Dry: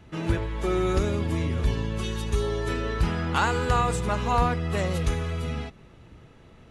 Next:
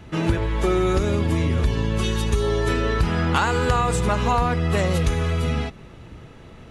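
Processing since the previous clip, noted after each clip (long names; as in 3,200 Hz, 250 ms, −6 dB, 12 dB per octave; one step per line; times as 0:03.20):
downward compressor, threshold −24 dBFS, peak gain reduction 7.5 dB
level +8 dB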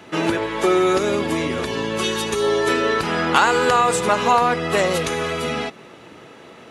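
high-pass filter 310 Hz 12 dB per octave
level +6 dB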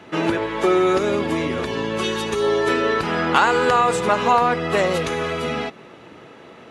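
high-shelf EQ 5,500 Hz −9.5 dB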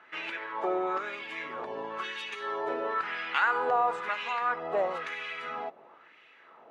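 LFO wah 1 Hz 700–2,500 Hz, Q 2.4
level −3.5 dB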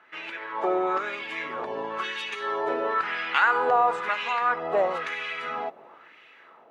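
automatic gain control gain up to 6 dB
level −1 dB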